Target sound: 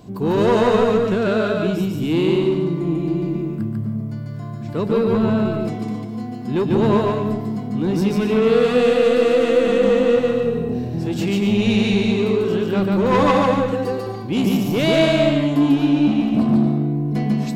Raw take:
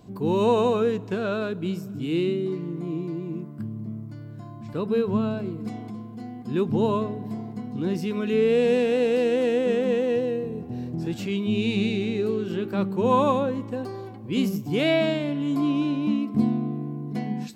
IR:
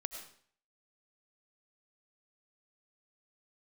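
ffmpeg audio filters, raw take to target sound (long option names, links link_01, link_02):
-filter_complex "[0:a]asettb=1/sr,asplit=3[link_01][link_02][link_03];[link_01]atrim=end=13.144[link_04];[link_02]atrim=start=13.14:end=13.92,asetpts=PTS-STARTPTS,afade=type=in:duration=0.004:curve=qsin,afade=type=out:start_time=0.776:duration=0.004:curve=qsin,aecho=1:1:6.2:0.83,atrim=end_sample=34398[link_05];[link_03]atrim=start=13.916[link_06];[link_04][link_05]acrossfade=duration=0.004:curve1=hsin:curve2=qsin[link_07];[link_07][link_06]acrossfade=duration=0.004:curve1=qsin:curve2=hsin,asoftclip=type=tanh:threshold=-20.5dB,asplit=2[link_08][link_09];[1:a]atrim=start_sample=2205,adelay=145[link_10];[link_09][link_10]afir=irnorm=-1:irlink=0,volume=0.5dB[link_11];[link_08][link_11]amix=inputs=2:normalize=0,volume=7dB"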